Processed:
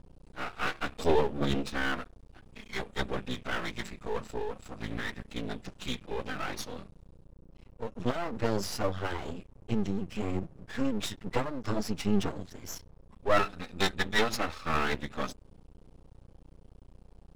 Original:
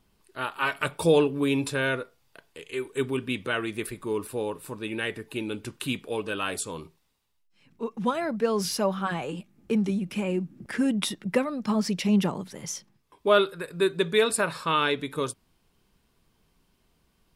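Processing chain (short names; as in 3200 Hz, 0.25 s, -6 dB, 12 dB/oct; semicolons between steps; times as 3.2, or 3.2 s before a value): buzz 60 Hz, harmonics 18, -49 dBFS -7 dB/oct; formant-preserving pitch shift -12 st; half-wave rectifier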